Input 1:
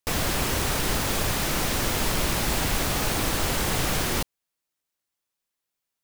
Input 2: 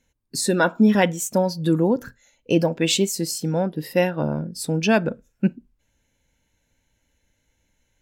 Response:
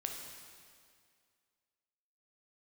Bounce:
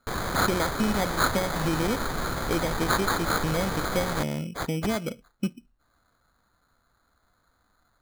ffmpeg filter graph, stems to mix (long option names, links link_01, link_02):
-filter_complex "[0:a]volume=-6dB[link_01];[1:a]acompressor=threshold=-22dB:ratio=4,volume=-2.5dB[link_02];[link_01][link_02]amix=inputs=2:normalize=0,equalizer=frequency=6800:width=5.9:gain=14.5,acrusher=samples=16:mix=1:aa=0.000001"